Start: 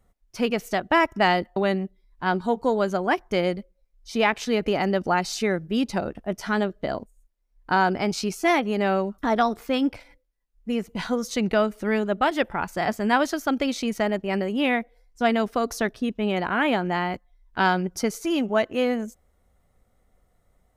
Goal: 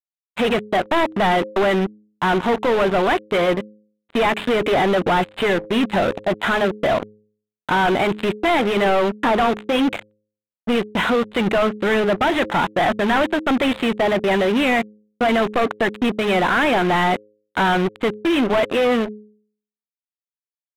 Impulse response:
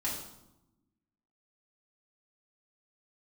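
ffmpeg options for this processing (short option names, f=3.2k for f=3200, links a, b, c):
-filter_complex "[0:a]asplit=2[a][b];[b]highpass=f=720:p=1,volume=34dB,asoftclip=type=tanh:threshold=-6.5dB[c];[a][c]amix=inputs=2:normalize=0,lowpass=f=2.8k:p=1,volume=-6dB,aresample=8000,acrusher=bits=2:mix=0:aa=0.5,aresample=44100,adynamicsmooth=sensitivity=6:basefreq=2.5k,bandreject=f=105.7:t=h:w=4,bandreject=f=211.4:t=h:w=4,bandreject=f=317.1:t=h:w=4,bandreject=f=422.8:t=h:w=4,bandreject=f=528.5:t=h:w=4,volume=-5dB"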